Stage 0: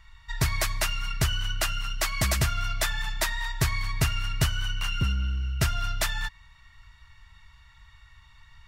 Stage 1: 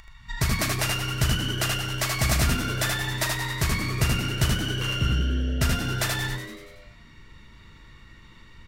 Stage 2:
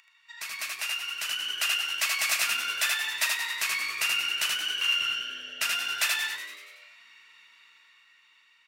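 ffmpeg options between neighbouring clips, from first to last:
-filter_complex "[0:a]asplit=2[a][b];[b]asplit=7[c][d][e][f][g][h][i];[c]adelay=95,afreqshift=94,volume=-9dB[j];[d]adelay=190,afreqshift=188,volume=-13.4dB[k];[e]adelay=285,afreqshift=282,volume=-17.9dB[l];[f]adelay=380,afreqshift=376,volume=-22.3dB[m];[g]adelay=475,afreqshift=470,volume=-26.7dB[n];[h]adelay=570,afreqshift=564,volume=-31.2dB[o];[i]adelay=665,afreqshift=658,volume=-35.6dB[p];[j][k][l][m][n][o][p]amix=inputs=7:normalize=0[q];[a][q]amix=inputs=2:normalize=0,acompressor=mode=upward:threshold=-45dB:ratio=2.5,asplit=2[r][s];[s]aecho=0:1:39|79:0.282|0.668[t];[r][t]amix=inputs=2:normalize=0"
-af "equalizer=f=2.6k:w=5.8:g=10,dynaudnorm=f=310:g=9:m=11.5dB,highpass=1.3k,volume=-8dB"

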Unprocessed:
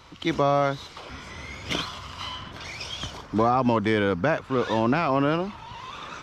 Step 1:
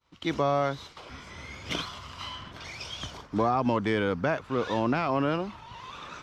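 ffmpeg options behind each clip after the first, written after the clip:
-af "agate=range=-33dB:threshold=-39dB:ratio=3:detection=peak,volume=-4dB"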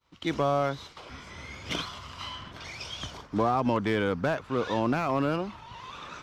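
-af "aeval=exprs='clip(val(0),-1,0.0794)':c=same"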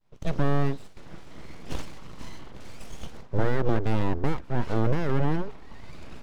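-af "aeval=exprs='abs(val(0))':c=same,tiltshelf=f=820:g=8"

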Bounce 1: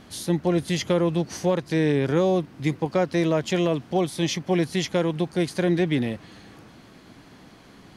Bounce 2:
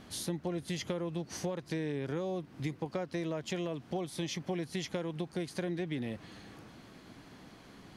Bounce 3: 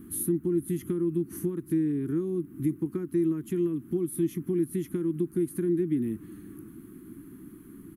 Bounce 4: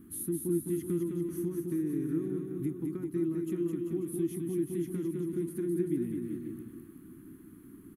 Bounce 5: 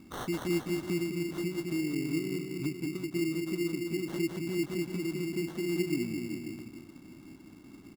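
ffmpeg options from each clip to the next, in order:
-af "acompressor=threshold=-28dB:ratio=6,volume=-4.5dB"
-af "firequalizer=gain_entry='entry(120,0);entry(340,10);entry(560,-30);entry(1200,-7);entry(2200,-14);entry(4800,-24);entry(11000,13)':delay=0.05:min_phase=1,volume=3.5dB"
-af "aecho=1:1:210|388.5|540.2|669.2|778.8:0.631|0.398|0.251|0.158|0.1,volume=-6.5dB"
-af "acrusher=samples=18:mix=1:aa=0.000001"

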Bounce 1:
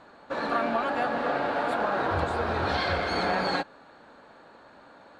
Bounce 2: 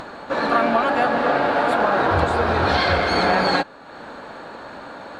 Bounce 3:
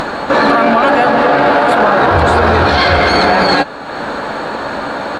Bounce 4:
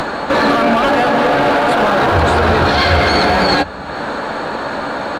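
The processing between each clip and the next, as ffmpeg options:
-af "acompressor=mode=upward:threshold=-36dB:ratio=2.5,volume=8.5dB"
-filter_complex "[0:a]asplit=2[a][b];[b]adelay=14,volume=-11.5dB[c];[a][c]amix=inputs=2:normalize=0,alimiter=level_in=17dB:limit=-1dB:release=50:level=0:latency=1,volume=-1dB"
-filter_complex "[0:a]acrossover=split=150|410|2600[a][b][c][d];[a]aecho=1:1:372:0.596[e];[c]asoftclip=type=hard:threshold=-11dB[f];[e][b][f][d]amix=inputs=4:normalize=0,volume=-1dB"

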